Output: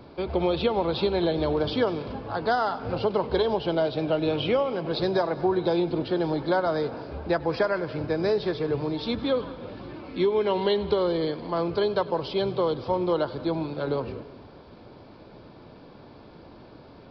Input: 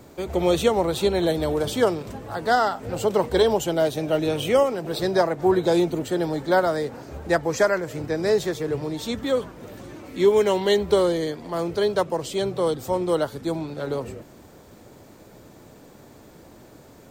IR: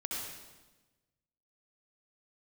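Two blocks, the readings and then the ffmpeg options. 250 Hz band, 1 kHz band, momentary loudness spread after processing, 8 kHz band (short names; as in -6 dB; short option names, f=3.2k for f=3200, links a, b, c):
-2.0 dB, -3.0 dB, 5 LU, under -25 dB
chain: -filter_complex "[0:a]equalizer=f=1k:w=4.2:g=3.5,bandreject=f=1.9k:w=7.8,acompressor=threshold=-20dB:ratio=6,asplit=2[a][b];[1:a]atrim=start_sample=2205,adelay=99[c];[b][c]afir=irnorm=-1:irlink=0,volume=-18dB[d];[a][d]amix=inputs=2:normalize=0,aresample=11025,aresample=44100"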